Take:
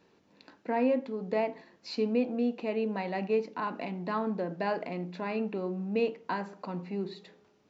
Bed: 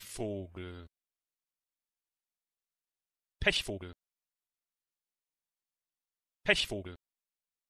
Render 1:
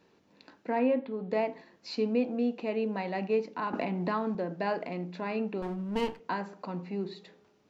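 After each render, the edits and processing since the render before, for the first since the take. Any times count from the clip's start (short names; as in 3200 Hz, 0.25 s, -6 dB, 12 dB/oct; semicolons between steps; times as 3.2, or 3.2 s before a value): 0.79–1.31 steep low-pass 4000 Hz; 3.73–4.35 three-band squash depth 100%; 5.62–6.2 minimum comb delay 0.64 ms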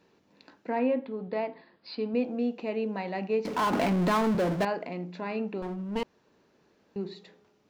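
1.28–2.14 rippled Chebyshev low-pass 5000 Hz, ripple 3 dB; 3.45–4.65 power-law curve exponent 0.5; 6.03–6.96 room tone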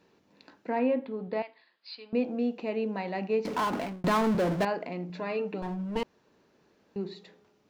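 1.42–2.13 band-pass 3700 Hz, Q 0.84; 3.54–4.04 fade out; 5.09–5.97 comb 6.6 ms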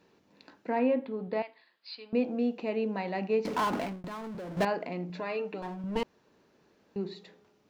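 4–4.57 compressor, threshold -39 dBFS; 5.21–5.84 low shelf 220 Hz -11 dB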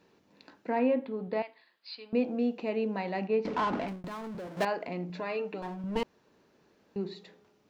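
3.27–3.88 air absorption 140 m; 4.47–4.88 HPF 330 Hz 6 dB/oct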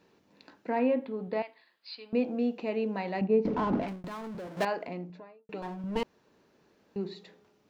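3.21–3.83 tilt shelf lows +8 dB, about 680 Hz; 4.73–5.49 studio fade out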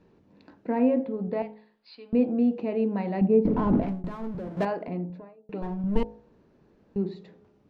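tilt -3.5 dB/oct; de-hum 53.44 Hz, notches 17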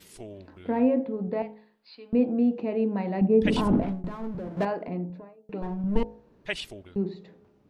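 add bed -5 dB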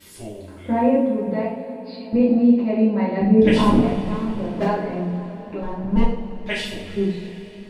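two-slope reverb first 0.51 s, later 4.8 s, from -18 dB, DRR -7 dB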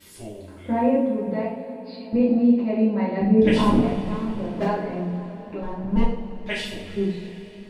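gain -2.5 dB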